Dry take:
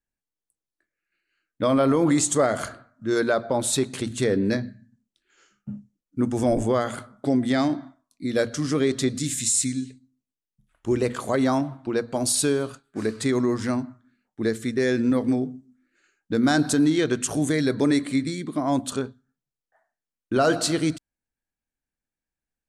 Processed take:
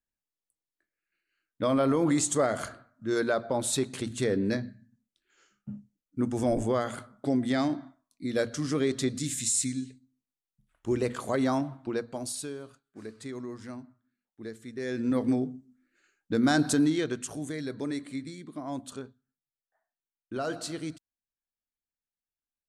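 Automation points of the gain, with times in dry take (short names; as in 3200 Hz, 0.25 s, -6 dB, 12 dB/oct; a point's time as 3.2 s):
11.88 s -5 dB
12.5 s -16 dB
14.66 s -16 dB
15.21 s -3.5 dB
16.78 s -3.5 dB
17.39 s -12.5 dB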